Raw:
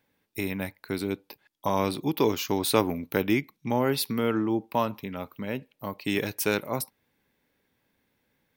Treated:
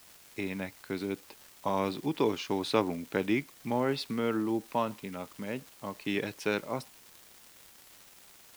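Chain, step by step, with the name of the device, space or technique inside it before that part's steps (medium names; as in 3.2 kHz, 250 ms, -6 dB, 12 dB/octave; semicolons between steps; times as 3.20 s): 78 rpm shellac record (band-pass 120–4600 Hz; crackle 220 per s -37 dBFS; white noise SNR 23 dB); trim -4 dB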